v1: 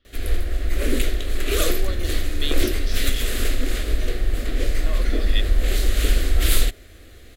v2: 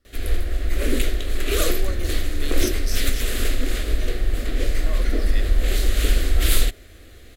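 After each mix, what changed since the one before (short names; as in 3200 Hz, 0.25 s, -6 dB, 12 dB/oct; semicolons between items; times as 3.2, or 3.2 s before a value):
speech: remove synth low-pass 3300 Hz, resonance Q 5.3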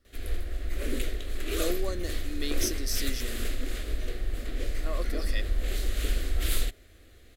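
background -9.5 dB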